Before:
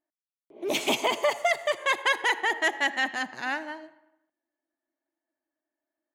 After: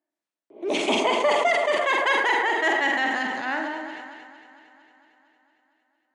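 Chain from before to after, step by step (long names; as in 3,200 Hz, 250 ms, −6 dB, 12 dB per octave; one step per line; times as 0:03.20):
high-pass filter 180 Hz 24 dB per octave
high-shelf EQ 3,600 Hz −10 dB
delay that swaps between a low-pass and a high-pass 114 ms, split 2,000 Hz, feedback 82%, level −12 dB
on a send at −8.5 dB: convolution reverb, pre-delay 47 ms
on the sum: downsampling to 22,050 Hz
level that may fall only so fast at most 27 dB per second
level +2.5 dB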